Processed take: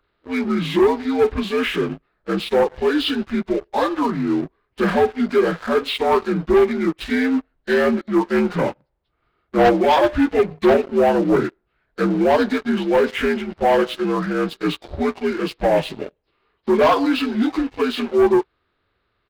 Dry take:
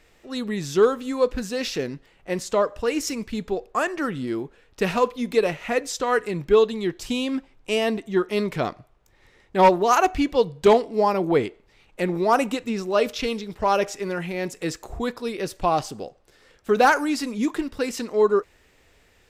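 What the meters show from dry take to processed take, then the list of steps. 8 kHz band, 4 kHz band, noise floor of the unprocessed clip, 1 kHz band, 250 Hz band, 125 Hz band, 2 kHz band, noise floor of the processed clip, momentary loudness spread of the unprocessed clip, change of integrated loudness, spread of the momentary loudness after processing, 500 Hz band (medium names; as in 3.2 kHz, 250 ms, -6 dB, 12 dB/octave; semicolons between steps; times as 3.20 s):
no reading, +4.5 dB, -59 dBFS, +1.5 dB, +7.0 dB, +4.0 dB, +3.5 dB, -71 dBFS, 12 LU, +4.0 dB, 9 LU, +4.0 dB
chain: frequency axis rescaled in octaves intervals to 80%; resampled via 11.025 kHz; waveshaping leveller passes 3; trim -3.5 dB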